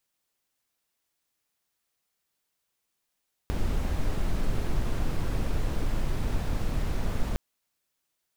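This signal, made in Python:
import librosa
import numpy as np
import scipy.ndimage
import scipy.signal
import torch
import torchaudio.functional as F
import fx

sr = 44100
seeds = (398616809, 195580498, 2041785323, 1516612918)

y = fx.noise_colour(sr, seeds[0], length_s=3.86, colour='brown', level_db=-25.5)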